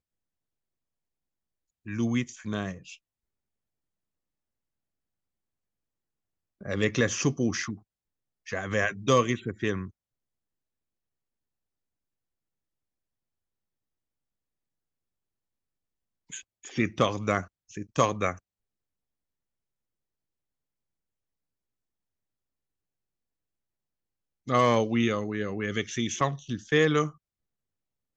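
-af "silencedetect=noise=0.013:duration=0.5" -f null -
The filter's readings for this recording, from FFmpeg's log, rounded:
silence_start: 0.00
silence_end: 1.87 | silence_duration: 1.87
silence_start: 2.94
silence_end: 6.61 | silence_duration: 3.67
silence_start: 7.75
silence_end: 8.47 | silence_duration: 0.72
silence_start: 9.87
silence_end: 16.32 | silence_duration: 6.45
silence_start: 18.36
silence_end: 24.48 | silence_duration: 6.12
silence_start: 27.10
silence_end: 28.17 | silence_duration: 1.07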